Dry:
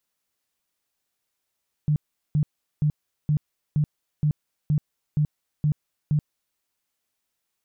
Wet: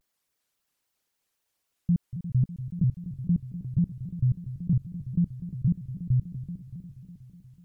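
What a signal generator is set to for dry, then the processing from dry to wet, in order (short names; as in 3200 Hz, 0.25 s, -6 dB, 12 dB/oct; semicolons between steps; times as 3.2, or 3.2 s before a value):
tone bursts 150 Hz, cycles 12, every 0.47 s, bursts 10, -17.5 dBFS
formant sharpening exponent 1.5; on a send: multi-head echo 0.122 s, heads second and third, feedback 63%, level -12.5 dB; on the sum: shaped vibrato square 3.7 Hz, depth 250 cents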